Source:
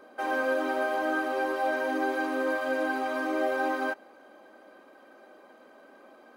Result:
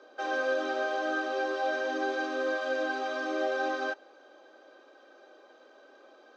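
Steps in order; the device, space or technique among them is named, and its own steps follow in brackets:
low-pass filter 7,900 Hz 24 dB per octave
phone speaker on a table (loudspeaker in its box 330–6,700 Hz, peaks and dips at 690 Hz −4 dB, 1,100 Hz −4 dB, 2,100 Hz −7 dB, 3,700 Hz +6 dB, 5,900 Hz +7 dB)
notch filter 940 Hz, Q 13

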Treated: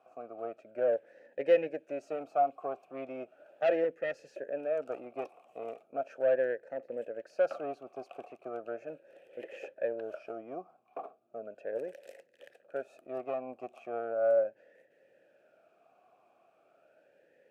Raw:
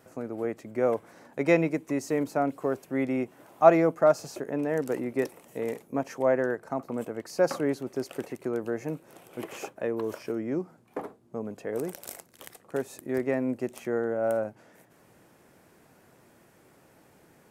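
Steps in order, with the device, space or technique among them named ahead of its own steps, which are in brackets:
talk box (tube saturation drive 20 dB, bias 0.7; formant filter swept between two vowels a-e 0.37 Hz)
0:03.84–0:04.36: parametric band 640 Hz −9.5 dB 0.77 octaves
level +8 dB

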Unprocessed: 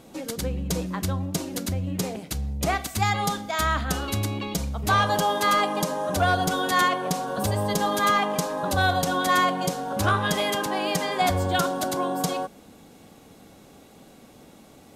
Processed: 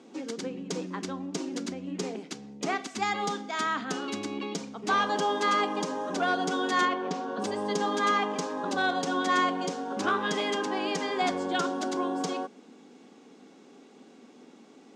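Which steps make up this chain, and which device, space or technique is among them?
television speaker (loudspeaker in its box 210–6,900 Hz, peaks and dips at 250 Hz +6 dB, 400 Hz +6 dB, 610 Hz −6 dB, 4,000 Hz −3 dB)
0:06.85–0:07.42: high-frequency loss of the air 91 metres
level −4 dB

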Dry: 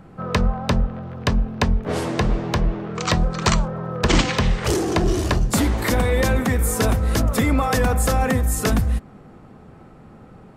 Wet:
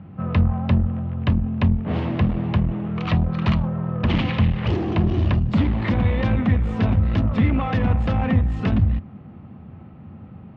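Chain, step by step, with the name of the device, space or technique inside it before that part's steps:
guitar amplifier (tube saturation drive 17 dB, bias 0.4; bass and treble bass +8 dB, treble −3 dB; loudspeaker in its box 77–3,500 Hz, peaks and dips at 89 Hz +8 dB, 210 Hz +4 dB, 440 Hz −6 dB, 1,500 Hz −4 dB, 2,800 Hz +3 dB)
level −1.5 dB

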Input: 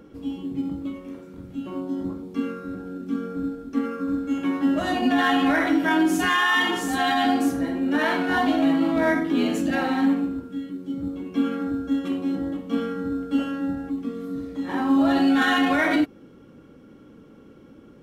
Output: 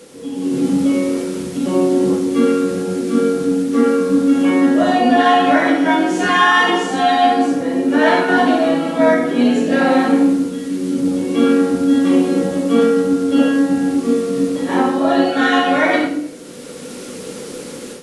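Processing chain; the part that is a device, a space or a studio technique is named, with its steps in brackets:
filmed off a television (band-pass filter 160–7,400 Hz; parametric band 480 Hz +11.5 dB 0.45 octaves; convolution reverb RT60 0.65 s, pre-delay 5 ms, DRR −3.5 dB; white noise bed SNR 26 dB; automatic gain control gain up to 11.5 dB; level −1 dB; AAC 48 kbit/s 24,000 Hz)

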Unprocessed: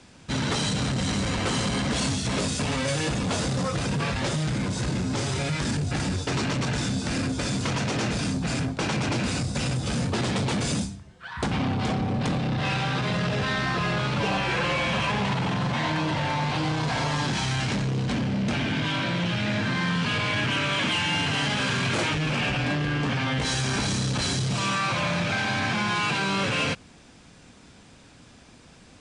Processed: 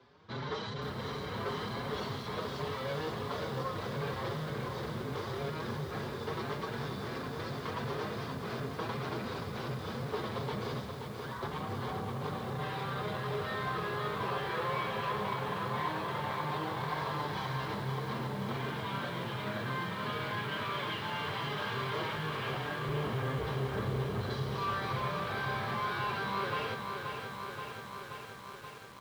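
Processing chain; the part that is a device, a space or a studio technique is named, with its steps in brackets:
0:22.86–0:24.30: spectral tilt −3.5 dB per octave
barber-pole flanger into a guitar amplifier (barber-pole flanger 5.5 ms +2.8 Hz; soft clipping −23.5 dBFS, distortion −12 dB; loudspeaker in its box 92–4,100 Hz, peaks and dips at 180 Hz −6 dB, 280 Hz −9 dB, 420 Hz +9 dB, 1,100 Hz +8 dB, 2,600 Hz −9 dB)
feedback echo at a low word length 528 ms, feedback 80%, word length 8 bits, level −6 dB
level −6.5 dB

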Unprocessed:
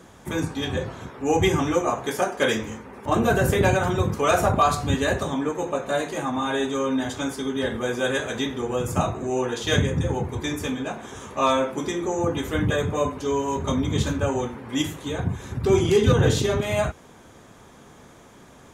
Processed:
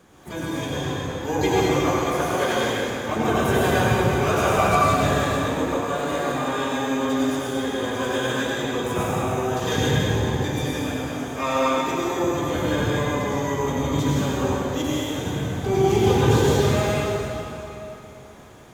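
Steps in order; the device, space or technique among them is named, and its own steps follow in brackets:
shimmer-style reverb (pitch-shifted copies added +12 semitones −9 dB; convolution reverb RT60 3.1 s, pre-delay 84 ms, DRR −6.5 dB)
level −6.5 dB

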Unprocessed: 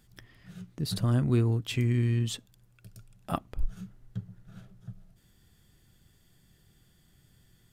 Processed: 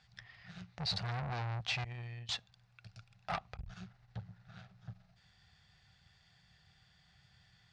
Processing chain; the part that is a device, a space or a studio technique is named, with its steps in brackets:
0:01.84–0:02.29: downward expander −16 dBFS
scooped metal amplifier (tube saturation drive 37 dB, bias 0.8; loudspeaker in its box 86–4,500 Hz, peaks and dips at 170 Hz +4 dB, 760 Hz +9 dB, 3,200 Hz −7 dB; guitar amp tone stack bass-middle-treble 10-0-10)
level +14 dB

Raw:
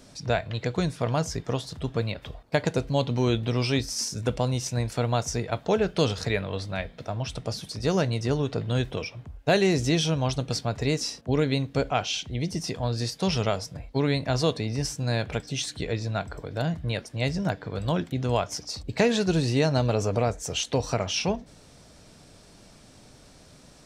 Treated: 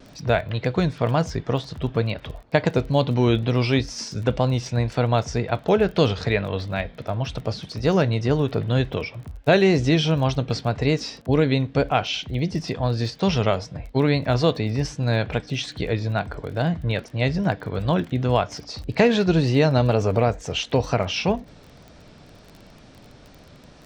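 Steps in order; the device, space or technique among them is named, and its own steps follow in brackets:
lo-fi chain (low-pass filter 3,800 Hz 12 dB per octave; tape wow and flutter; surface crackle 25 per second −39 dBFS)
level +5 dB

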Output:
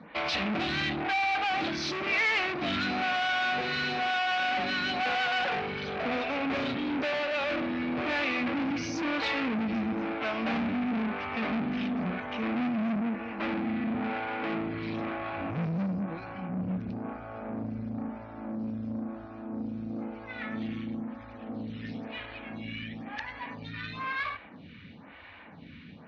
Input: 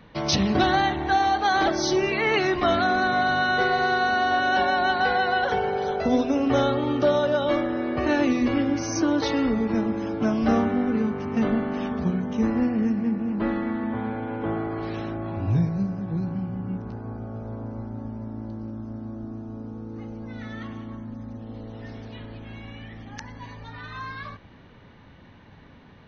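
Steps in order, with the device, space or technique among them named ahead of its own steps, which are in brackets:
0:06.76–0:07.31: elliptic high-pass filter 160 Hz
vibe pedal into a guitar amplifier (phaser with staggered stages 1 Hz; tube saturation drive 35 dB, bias 0.45; loudspeaker in its box 96–4,500 Hz, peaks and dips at 120 Hz −10 dB, 390 Hz −10 dB, 550 Hz −3 dB, 940 Hz −4 dB, 2,400 Hz +8 dB)
level +8.5 dB

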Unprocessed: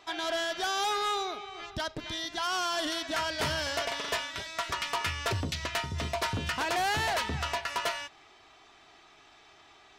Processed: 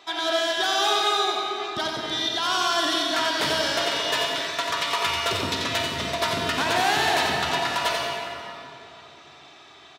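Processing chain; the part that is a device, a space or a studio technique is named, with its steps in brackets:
PA in a hall (high-pass filter 170 Hz 12 dB per octave; parametric band 3,700 Hz +6 dB 0.27 octaves; single-tap delay 89 ms −6 dB; convolution reverb RT60 3.1 s, pre-delay 40 ms, DRR 1 dB)
level +4 dB

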